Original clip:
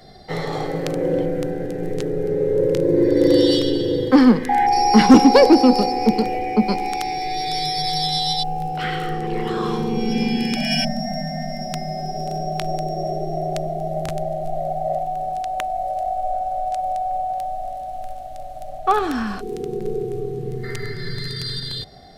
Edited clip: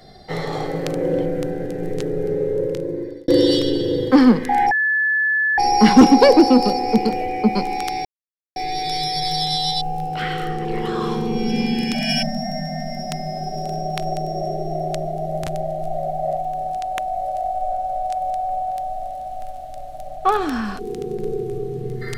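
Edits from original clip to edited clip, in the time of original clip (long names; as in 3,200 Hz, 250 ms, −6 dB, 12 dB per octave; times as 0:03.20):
0:02.28–0:03.28: fade out
0:04.71: insert tone 1,730 Hz −15.5 dBFS 0.87 s
0:07.18: splice in silence 0.51 s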